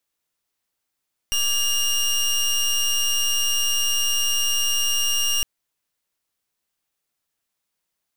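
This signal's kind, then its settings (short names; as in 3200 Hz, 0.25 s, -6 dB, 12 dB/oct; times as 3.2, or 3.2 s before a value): pulse 2830 Hz, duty 22% -21 dBFS 4.11 s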